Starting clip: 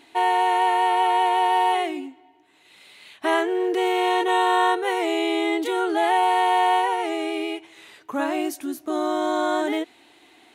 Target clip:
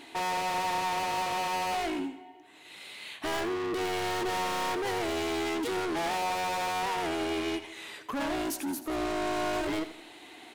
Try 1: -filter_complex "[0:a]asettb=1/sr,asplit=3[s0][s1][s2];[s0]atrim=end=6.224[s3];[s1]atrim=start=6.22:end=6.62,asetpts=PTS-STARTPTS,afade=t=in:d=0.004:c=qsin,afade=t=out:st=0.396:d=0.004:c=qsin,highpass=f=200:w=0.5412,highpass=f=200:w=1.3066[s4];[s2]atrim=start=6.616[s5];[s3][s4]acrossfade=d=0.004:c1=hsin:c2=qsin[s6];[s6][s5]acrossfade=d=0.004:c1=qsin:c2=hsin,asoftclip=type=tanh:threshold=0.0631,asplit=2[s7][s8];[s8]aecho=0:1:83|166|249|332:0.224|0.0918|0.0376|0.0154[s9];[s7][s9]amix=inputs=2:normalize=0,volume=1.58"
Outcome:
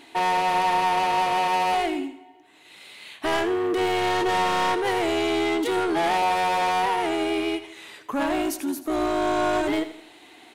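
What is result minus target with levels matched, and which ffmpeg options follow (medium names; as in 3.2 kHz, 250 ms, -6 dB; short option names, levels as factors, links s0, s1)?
saturation: distortion -4 dB
-filter_complex "[0:a]asettb=1/sr,asplit=3[s0][s1][s2];[s0]atrim=end=6.224[s3];[s1]atrim=start=6.22:end=6.62,asetpts=PTS-STARTPTS,afade=t=in:d=0.004:c=qsin,afade=t=out:st=0.396:d=0.004:c=qsin,highpass=f=200:w=0.5412,highpass=f=200:w=1.3066[s4];[s2]atrim=start=6.616[s5];[s3][s4]acrossfade=d=0.004:c1=hsin:c2=qsin[s6];[s6][s5]acrossfade=d=0.004:c1=qsin:c2=hsin,asoftclip=type=tanh:threshold=0.02,asplit=2[s7][s8];[s8]aecho=0:1:83|166|249|332:0.224|0.0918|0.0376|0.0154[s9];[s7][s9]amix=inputs=2:normalize=0,volume=1.58"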